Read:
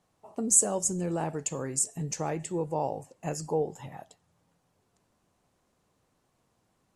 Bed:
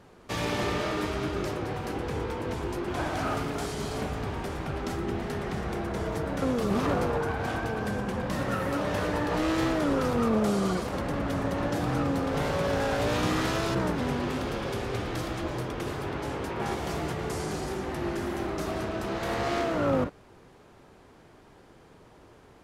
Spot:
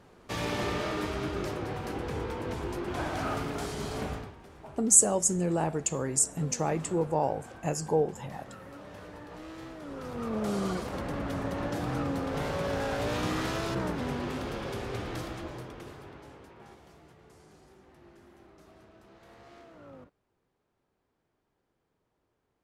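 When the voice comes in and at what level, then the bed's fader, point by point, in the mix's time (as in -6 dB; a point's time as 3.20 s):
4.40 s, +2.5 dB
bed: 4.14 s -2.5 dB
4.36 s -17.5 dB
9.78 s -17.5 dB
10.55 s -4 dB
15.16 s -4 dB
16.98 s -24.5 dB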